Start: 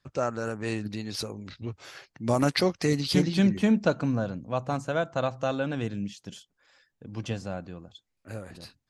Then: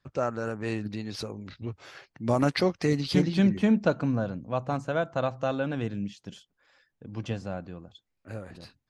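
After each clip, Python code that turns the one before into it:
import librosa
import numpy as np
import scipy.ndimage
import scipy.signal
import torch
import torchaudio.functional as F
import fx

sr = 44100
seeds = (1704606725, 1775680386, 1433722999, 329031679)

y = fx.lowpass(x, sr, hz=3500.0, slope=6)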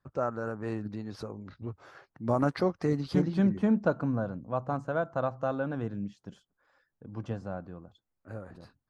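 y = fx.high_shelf_res(x, sr, hz=1800.0, db=-8.5, q=1.5)
y = y * 10.0 ** (-3.0 / 20.0)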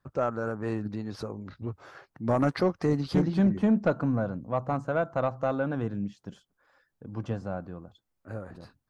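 y = 10.0 ** (-18.0 / 20.0) * np.tanh(x / 10.0 ** (-18.0 / 20.0))
y = y * 10.0 ** (3.5 / 20.0)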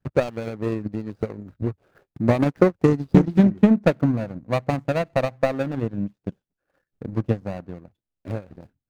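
y = scipy.ndimage.median_filter(x, 41, mode='constant')
y = fx.transient(y, sr, attack_db=10, sustain_db=-9)
y = y * 10.0 ** (3.5 / 20.0)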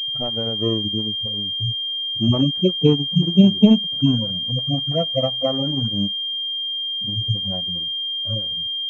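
y = fx.hpss_only(x, sr, part='harmonic')
y = fx.pwm(y, sr, carrier_hz=3200.0)
y = y * 10.0 ** (3.5 / 20.0)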